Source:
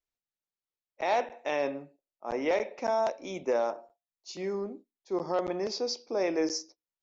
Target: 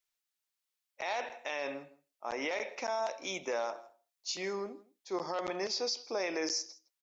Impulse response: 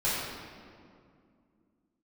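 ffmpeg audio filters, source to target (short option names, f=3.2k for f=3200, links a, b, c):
-af "tiltshelf=f=750:g=-8,alimiter=level_in=1dB:limit=-24dB:level=0:latency=1:release=69,volume=-1dB,aecho=1:1:163:0.0841"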